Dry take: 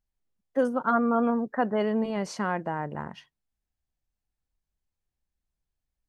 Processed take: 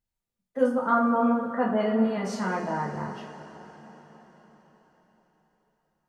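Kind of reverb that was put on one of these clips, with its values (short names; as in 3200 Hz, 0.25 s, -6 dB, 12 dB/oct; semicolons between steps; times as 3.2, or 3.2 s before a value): two-slope reverb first 0.34 s, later 4.8 s, from -18 dB, DRR -4.5 dB; gain -5 dB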